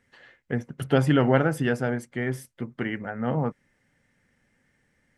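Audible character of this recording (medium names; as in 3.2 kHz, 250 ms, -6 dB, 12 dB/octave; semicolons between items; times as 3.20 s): noise floor -70 dBFS; spectral tilt -5.0 dB/octave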